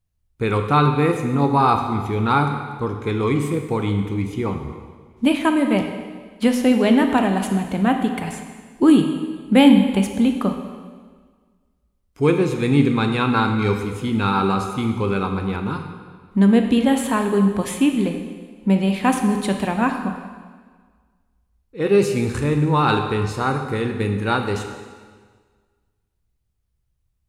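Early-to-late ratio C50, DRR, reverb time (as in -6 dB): 6.5 dB, 4.5 dB, 1.6 s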